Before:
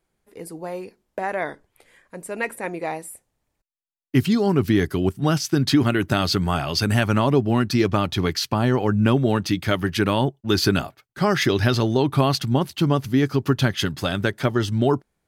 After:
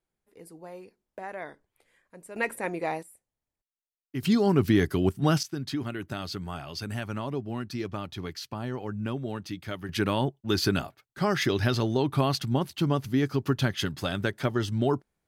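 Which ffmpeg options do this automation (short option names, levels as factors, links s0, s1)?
-af "asetnsamples=n=441:p=0,asendcmd='2.36 volume volume -2.5dB;3.03 volume volume -15dB;4.23 volume volume -3dB;5.43 volume volume -14dB;9.89 volume volume -6dB',volume=0.251"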